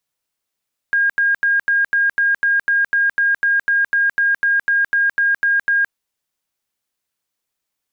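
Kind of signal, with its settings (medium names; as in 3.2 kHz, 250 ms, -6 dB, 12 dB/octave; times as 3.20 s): tone bursts 1.62 kHz, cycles 270, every 0.25 s, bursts 20, -12.5 dBFS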